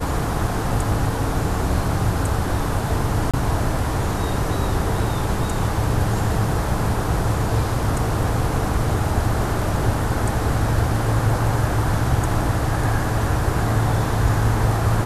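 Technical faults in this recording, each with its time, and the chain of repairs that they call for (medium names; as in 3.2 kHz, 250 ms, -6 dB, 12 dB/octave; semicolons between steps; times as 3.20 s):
3.31–3.34 s: dropout 26 ms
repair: interpolate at 3.31 s, 26 ms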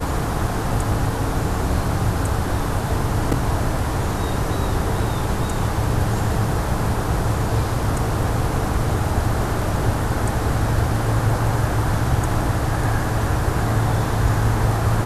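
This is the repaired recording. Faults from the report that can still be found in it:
nothing left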